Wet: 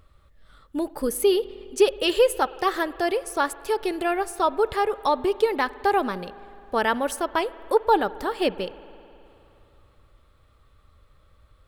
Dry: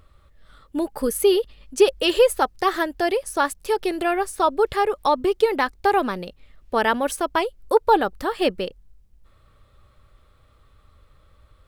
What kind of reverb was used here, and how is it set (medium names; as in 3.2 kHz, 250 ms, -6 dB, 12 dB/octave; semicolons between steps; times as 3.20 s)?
spring tank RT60 3 s, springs 52 ms, chirp 45 ms, DRR 17.5 dB; trim -2.5 dB